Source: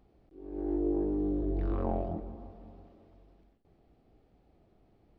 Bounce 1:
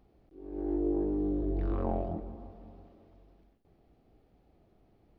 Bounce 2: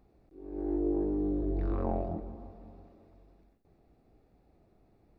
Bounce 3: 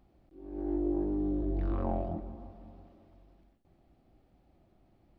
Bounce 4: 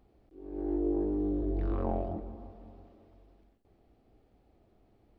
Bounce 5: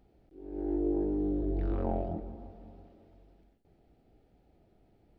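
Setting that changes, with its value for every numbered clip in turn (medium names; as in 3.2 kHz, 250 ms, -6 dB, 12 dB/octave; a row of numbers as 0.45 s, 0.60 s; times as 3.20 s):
band-stop, frequency: 7.8 kHz, 3.1 kHz, 440 Hz, 160 Hz, 1.1 kHz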